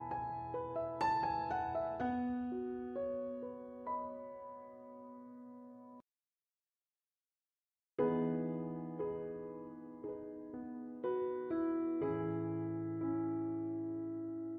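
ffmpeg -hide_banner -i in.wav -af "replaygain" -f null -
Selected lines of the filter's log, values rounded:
track_gain = +21.1 dB
track_peak = 0.048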